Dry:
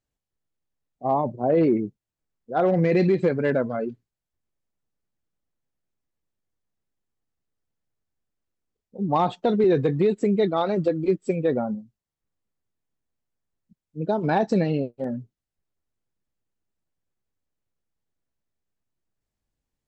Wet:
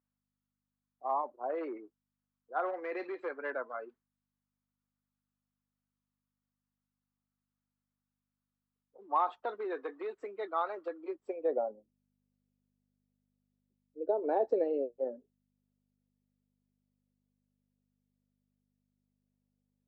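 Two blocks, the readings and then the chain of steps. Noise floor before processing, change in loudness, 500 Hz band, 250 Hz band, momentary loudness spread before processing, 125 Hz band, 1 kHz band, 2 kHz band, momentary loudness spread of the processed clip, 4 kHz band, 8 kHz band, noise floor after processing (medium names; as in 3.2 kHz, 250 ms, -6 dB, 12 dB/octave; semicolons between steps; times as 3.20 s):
under -85 dBFS, -12.5 dB, -11.5 dB, -20.5 dB, 12 LU, under -40 dB, -7.5 dB, -9.5 dB, 11 LU, under -15 dB, no reading, under -85 dBFS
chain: steep high-pass 270 Hz 48 dB/octave; hum 50 Hz, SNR 30 dB; band-pass sweep 1.2 kHz -> 500 Hz, 10.95–11.77 s; trim -2 dB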